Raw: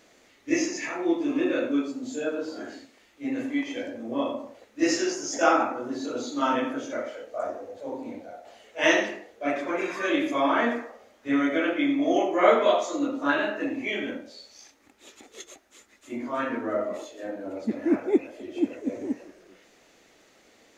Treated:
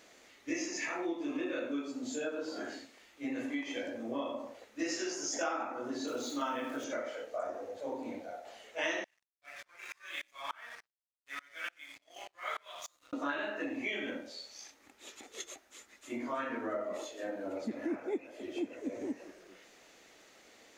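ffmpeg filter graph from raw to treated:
-filter_complex "[0:a]asettb=1/sr,asplit=3[a][b][c];[a]atrim=end=6.074[d];[b]atrim=start=6.07:end=6.84,asetpts=PTS-STARTPTS,afade=t=in:d=0.004:c=qsin,afade=t=out:st=0.766:d=0.004:c=qsin,highpass=54,bandreject=f=4.7k:w=17,aeval=exprs='val(0)*gte(abs(val(0)),0.00562)':c=same[e];[c]atrim=start=6.836[f];[d][e]acrossfade=d=0.004:c1=hsin:c2=qsin[g];[g][f]acrossfade=d=0.004:c1=qsin:c2=hsin,asettb=1/sr,asplit=3[h][i][j];[h]atrim=end=9.044[k];[i]atrim=start=9.04:end=13.13,asetpts=PTS-STARTPTS,afade=t=in:d=0.004:c=qsin,afade=t=out:st=4.086:d=0.004:c=qsin,highpass=1.4k,aeval=exprs='sgn(val(0))*max(abs(val(0))-0.00562,0)':c=same,aeval=exprs='val(0)*pow(10,-30*if(lt(mod(-3.4*n/s,1),2*abs(-3.4)/1000),1-mod(-3.4*n/s,1)/(2*abs(-3.4)/1000),(mod(-3.4*n/s,1)-2*abs(-3.4)/1000)/(1-2*abs(-3.4)/1000))/20)':c=same[l];[j]atrim=start=13.126[m];[k][l]acrossfade=d=0.004:c1=hsin:c2=qsin[n];[n][m]acrossfade=d=0.004:c1=qsin:c2=hsin,lowshelf=f=430:g=-6,acompressor=threshold=-34dB:ratio=4"

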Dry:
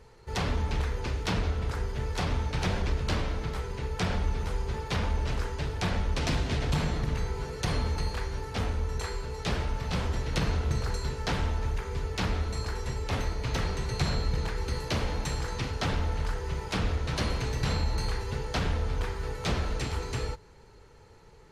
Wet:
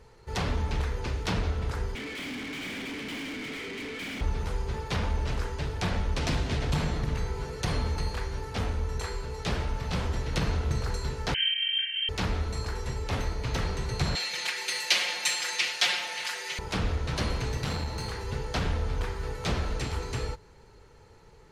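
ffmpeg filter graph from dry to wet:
-filter_complex "[0:a]asettb=1/sr,asplit=3[a][b][c];[a]atrim=end=1.954[d];[b]atrim=start=1.95:end=4.21,asetpts=PTS-STARTPTS,afade=t=in:d=0.004:c=qsin,afade=t=out:st=2.256:d=0.004:c=qsin,asplit=3[e][f][g];[e]bandpass=f=270:t=q:w=8,volume=0dB[h];[f]bandpass=f=2.29k:t=q:w=8,volume=-6dB[i];[g]bandpass=f=3.01k:t=q:w=8,volume=-9dB[j];[h][i][j]amix=inputs=3:normalize=0,asplit=2[k][l];[l]highpass=f=720:p=1,volume=40dB,asoftclip=type=tanh:threshold=-29dB[m];[k][m]amix=inputs=2:normalize=0,lowpass=f=3.3k:p=1,volume=-6dB[n];[c]atrim=start=4.206[o];[d][n]acrossfade=d=0.004:c1=hsin:c2=qsin[p];[p][o]acrossfade=d=0.004:c1=qsin:c2=hsin,asettb=1/sr,asplit=3[q][r][s];[q]atrim=end=11.344[t];[r]atrim=start=11.34:end=12.09,asetpts=PTS-STARTPTS,afade=t=in:d=0.004:c=qsin,afade=t=out:st=0.746:d=0.004:c=qsin,asuperstop=centerf=2300:order=20:qfactor=1.6,asplit=2[u][v];[v]adelay=34,volume=-3dB[w];[u][w]amix=inputs=2:normalize=0,atrim=end_sample=33075,lowpass=f=2.7k:t=q:w=0.5098,lowpass=f=2.7k:t=q:w=0.6013,lowpass=f=2.7k:t=q:w=0.9,lowpass=f=2.7k:t=q:w=2.563,afreqshift=-3200[x];[s]atrim=start=12.086[y];[t][x]acrossfade=d=0.004:c1=hsin:c2=qsin[z];[z][y]acrossfade=d=0.004:c1=qsin:c2=hsin,asettb=1/sr,asplit=3[aa][ab][ac];[aa]atrim=end=14.154[ad];[ab]atrim=start=14.15:end=16.59,asetpts=PTS-STARTPTS,afade=t=in:d=0.004:c=qsin,afade=t=out:st=2.436:d=0.004:c=qsin,highpass=720,highshelf=f=1.7k:t=q:w=1.5:g=9,aecho=1:1:5.6:0.89,atrim=end_sample=107604[ae];[ac]atrim=start=16.586[af];[ad][ae]acrossfade=d=0.004:c1=hsin:c2=qsin[ag];[ag][af]acrossfade=d=0.004:c1=qsin:c2=hsin,asettb=1/sr,asplit=3[ah][ai][aj];[ah]atrim=end=17.574[ak];[ai]atrim=start=17.57:end=18.24,asetpts=PTS-STARTPTS,afade=t=in:d=0.004:c=qsin,afade=t=out:st=0.666:d=0.004:c=qsin,highpass=76,aeval=exprs='clip(val(0),-1,0.0299)':c=same[al];[aj]atrim=start=18.236[am];[ak][al]acrossfade=d=0.004:c1=hsin:c2=qsin[an];[an][am]acrossfade=d=0.004:c1=qsin:c2=hsin"

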